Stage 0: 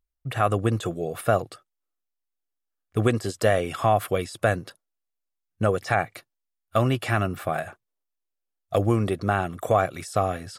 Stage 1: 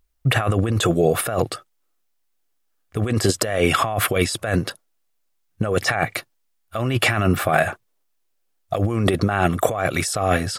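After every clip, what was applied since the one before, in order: dynamic bell 2.2 kHz, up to +4 dB, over -38 dBFS, Q 1.2; compressor with a negative ratio -28 dBFS, ratio -1; trim +8.5 dB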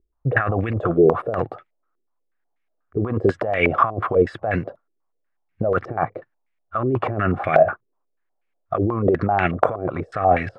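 step-sequenced low-pass 8.2 Hz 380–2200 Hz; trim -3.5 dB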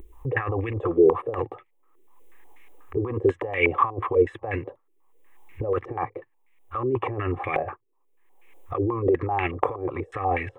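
upward compressor, threshold -20 dBFS; static phaser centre 970 Hz, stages 8; trim -1.5 dB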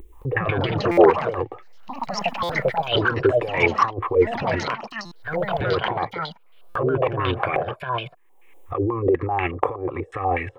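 ever faster or slower copies 217 ms, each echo +5 st, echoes 3; buffer glitch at 0.91/2.43/5.05/6.69 s, samples 256, times 10; trim +2 dB

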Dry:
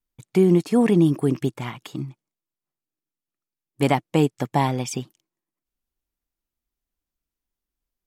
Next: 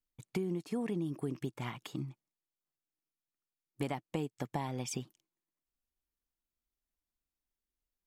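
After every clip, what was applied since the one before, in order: compression 6:1, threshold -26 dBFS, peak gain reduction 13 dB; trim -7 dB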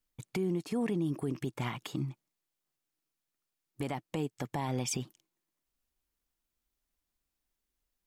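peak limiter -30.5 dBFS, peak gain reduction 8 dB; trim +6 dB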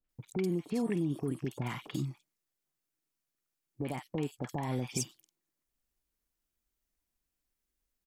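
three bands offset in time lows, mids, highs 40/90 ms, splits 940/3500 Hz

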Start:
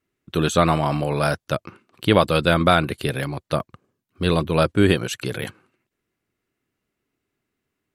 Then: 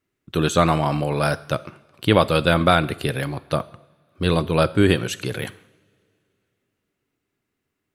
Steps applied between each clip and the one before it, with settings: two-slope reverb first 0.71 s, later 3 s, from -21 dB, DRR 15.5 dB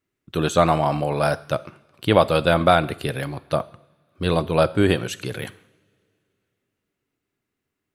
dynamic bell 700 Hz, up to +6 dB, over -31 dBFS, Q 1.5; trim -2.5 dB

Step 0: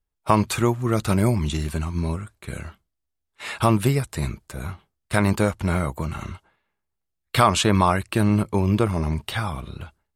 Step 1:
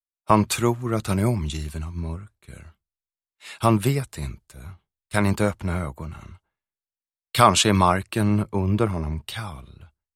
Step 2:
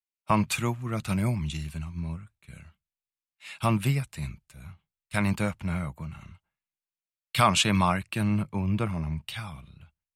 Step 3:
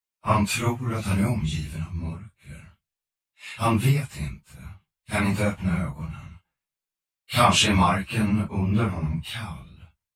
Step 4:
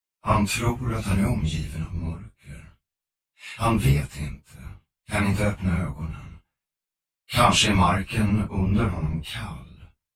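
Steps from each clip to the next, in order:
three bands expanded up and down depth 70%; trim -2 dB
fifteen-band graphic EQ 160 Hz +7 dB, 400 Hz -7 dB, 2.5 kHz +7 dB; trim -6.5 dB
phase randomisation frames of 100 ms; trim +4 dB
octave divider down 1 oct, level -6 dB

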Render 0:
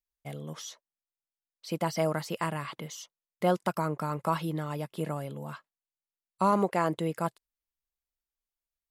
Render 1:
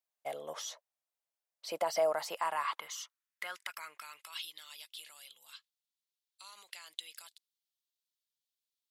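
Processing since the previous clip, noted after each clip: peak limiter -24 dBFS, peak gain reduction 10 dB; high-pass sweep 630 Hz -> 3.6 kHz, 2.06–4.52 s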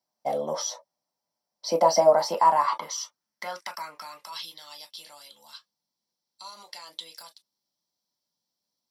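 reverberation, pre-delay 3 ms, DRR 2.5 dB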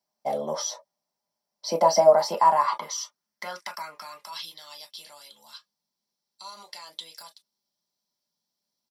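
comb 4.9 ms, depth 31%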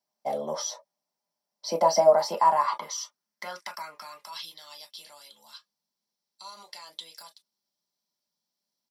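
high-pass 120 Hz; trim -2 dB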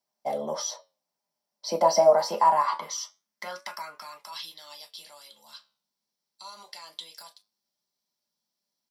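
flange 0.25 Hz, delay 7.3 ms, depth 8.2 ms, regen +80%; trim +5 dB

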